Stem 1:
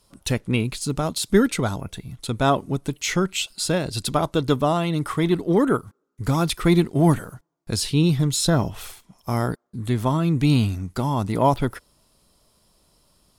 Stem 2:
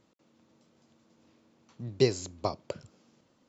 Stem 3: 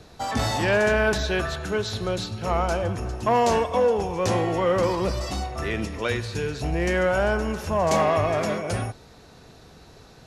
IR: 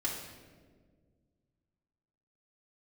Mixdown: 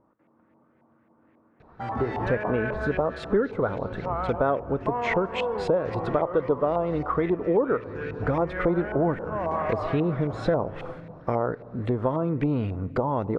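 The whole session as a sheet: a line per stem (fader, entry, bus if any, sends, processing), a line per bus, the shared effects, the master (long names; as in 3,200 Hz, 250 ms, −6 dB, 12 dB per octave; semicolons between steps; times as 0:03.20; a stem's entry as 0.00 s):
−1.0 dB, 2.00 s, send −22 dB, no echo send, parametric band 500 Hz +15 dB 0.7 octaves
0.0 dB, 0.00 s, send −11.5 dB, no echo send, low-pass filter 2,000 Hz
−7.0 dB, 1.60 s, no send, echo send −7 dB, no processing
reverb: on, RT60 1.7 s, pre-delay 3 ms
echo: repeating echo 181 ms, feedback 43%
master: auto-filter low-pass saw up 3.7 Hz 870–2,200 Hz; downward compressor 3 to 1, threshold −24 dBFS, peak gain reduction 14.5 dB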